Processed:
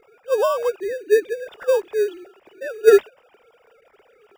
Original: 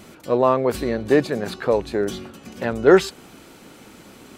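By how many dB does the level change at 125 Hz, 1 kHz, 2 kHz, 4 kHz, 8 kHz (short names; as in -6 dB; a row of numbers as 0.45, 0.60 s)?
under -30 dB, -5.0 dB, -2.5 dB, -4.5 dB, -1.0 dB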